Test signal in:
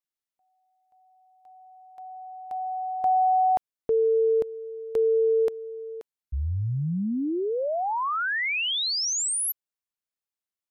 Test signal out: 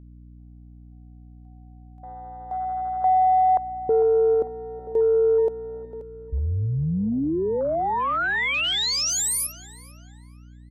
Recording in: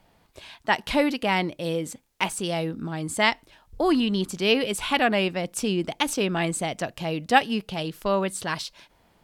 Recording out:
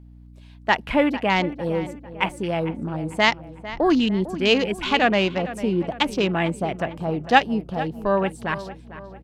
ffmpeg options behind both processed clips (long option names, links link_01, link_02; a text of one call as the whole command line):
ffmpeg -i in.wav -filter_complex "[0:a]afwtdn=0.02,asplit=2[link_01][link_02];[link_02]adelay=450,lowpass=frequency=2500:poles=1,volume=-14dB,asplit=2[link_03][link_04];[link_04]adelay=450,lowpass=frequency=2500:poles=1,volume=0.48,asplit=2[link_05][link_06];[link_06]adelay=450,lowpass=frequency=2500:poles=1,volume=0.48,asplit=2[link_07][link_08];[link_08]adelay=450,lowpass=frequency=2500:poles=1,volume=0.48,asplit=2[link_09][link_10];[link_10]adelay=450,lowpass=frequency=2500:poles=1,volume=0.48[link_11];[link_01][link_03][link_05][link_07][link_09][link_11]amix=inputs=6:normalize=0,aeval=exprs='val(0)+0.00447*(sin(2*PI*60*n/s)+sin(2*PI*2*60*n/s)/2+sin(2*PI*3*60*n/s)/3+sin(2*PI*4*60*n/s)/4+sin(2*PI*5*60*n/s)/5)':channel_layout=same,volume=3dB" out.wav